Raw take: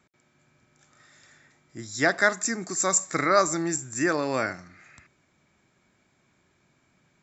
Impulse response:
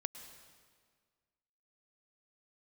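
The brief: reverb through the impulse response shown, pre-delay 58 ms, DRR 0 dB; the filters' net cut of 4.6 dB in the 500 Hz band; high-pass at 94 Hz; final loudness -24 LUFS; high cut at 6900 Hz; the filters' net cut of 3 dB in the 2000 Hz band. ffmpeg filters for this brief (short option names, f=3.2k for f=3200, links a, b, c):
-filter_complex "[0:a]highpass=94,lowpass=6.9k,equalizer=f=500:t=o:g=-6,equalizer=f=2k:t=o:g=-3.5,asplit=2[a][b];[1:a]atrim=start_sample=2205,adelay=58[c];[b][c]afir=irnorm=-1:irlink=0,volume=1.5dB[d];[a][d]amix=inputs=2:normalize=0,volume=1dB"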